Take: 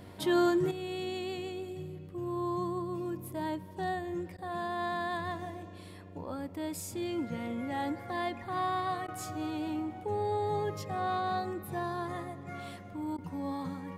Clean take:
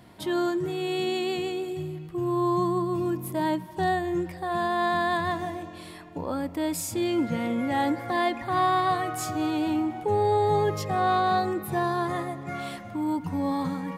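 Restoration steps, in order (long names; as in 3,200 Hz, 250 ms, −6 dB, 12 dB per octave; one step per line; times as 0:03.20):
hum removal 94.7 Hz, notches 6
repair the gap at 0:04.37/0:09.07/0:13.17, 11 ms
level correction +9 dB, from 0:00.71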